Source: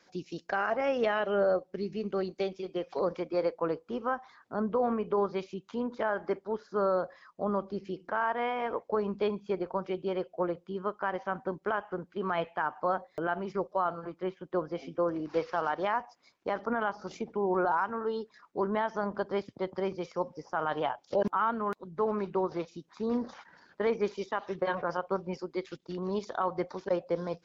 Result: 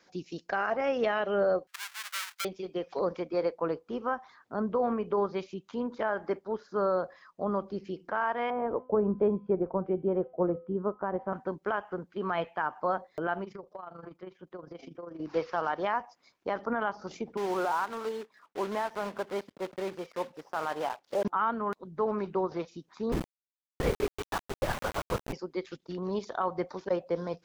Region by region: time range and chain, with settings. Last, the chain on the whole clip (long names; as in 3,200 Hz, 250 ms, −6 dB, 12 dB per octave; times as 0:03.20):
0:01.67–0:02.45: each half-wave held at its own peak + high-pass filter 1,300 Hz 24 dB per octave
0:08.50–0:11.33: low-pass filter 1,400 Hz + tilt shelving filter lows +6.5 dB, about 820 Hz + hum removal 254.4 Hz, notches 32
0:13.44–0:15.20: amplitude modulation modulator 25 Hz, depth 50% + downward compressor 4 to 1, threshold −40 dBFS
0:17.37–0:21.25: one scale factor per block 3 bits + low-pass filter 2,100 Hz 6 dB per octave + low-shelf EQ 190 Hz −12 dB
0:23.12–0:25.33: linear-prediction vocoder at 8 kHz whisper + centre clipping without the shift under −32 dBFS
whole clip: no processing